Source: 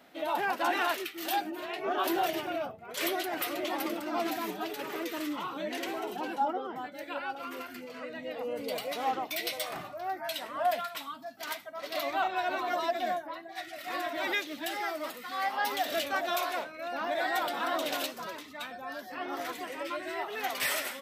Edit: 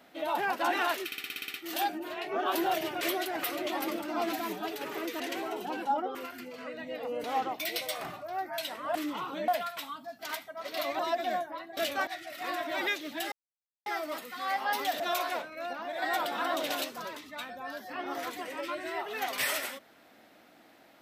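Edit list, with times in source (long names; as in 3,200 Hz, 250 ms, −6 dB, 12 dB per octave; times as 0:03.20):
0:01.06: stutter 0.06 s, 9 plays
0:02.53–0:02.99: remove
0:05.18–0:05.71: move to 0:10.66
0:06.66–0:07.51: remove
0:08.60–0:08.95: remove
0:12.17–0:12.75: remove
0:14.78: splice in silence 0.54 s
0:15.92–0:16.22: move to 0:13.53
0:16.95–0:17.24: clip gain −5.5 dB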